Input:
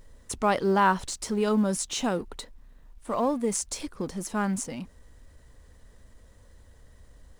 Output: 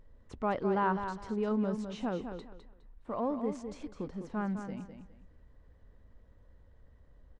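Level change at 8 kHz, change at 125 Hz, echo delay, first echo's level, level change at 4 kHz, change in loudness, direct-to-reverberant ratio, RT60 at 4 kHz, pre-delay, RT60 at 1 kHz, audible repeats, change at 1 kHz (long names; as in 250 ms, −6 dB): below −25 dB, −5.5 dB, 206 ms, −8.0 dB, −16.5 dB, −7.5 dB, no reverb audible, no reverb audible, no reverb audible, no reverb audible, 3, −8.0 dB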